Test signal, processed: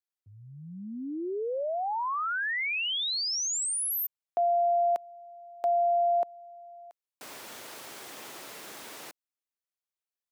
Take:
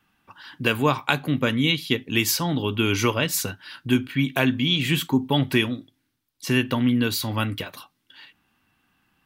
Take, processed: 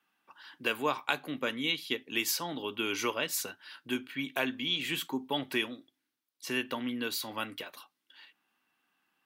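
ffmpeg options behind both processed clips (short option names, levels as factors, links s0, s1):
-af "highpass=340,volume=0.398"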